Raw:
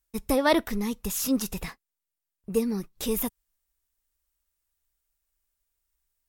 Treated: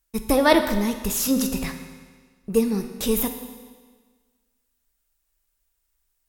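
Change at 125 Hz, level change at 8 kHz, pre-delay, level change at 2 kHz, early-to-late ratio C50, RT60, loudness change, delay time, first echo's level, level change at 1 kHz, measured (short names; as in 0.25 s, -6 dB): +5.5 dB, +5.0 dB, 8 ms, +5.5 dB, 8.0 dB, 1.5 s, +5.0 dB, none, none, +5.5 dB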